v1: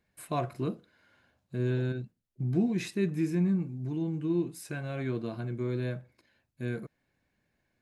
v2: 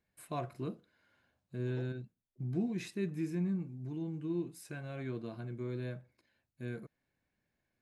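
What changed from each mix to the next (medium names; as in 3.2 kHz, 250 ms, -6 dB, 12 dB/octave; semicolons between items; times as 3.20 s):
first voice -7.0 dB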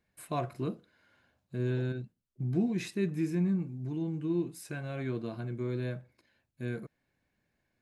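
first voice +5.0 dB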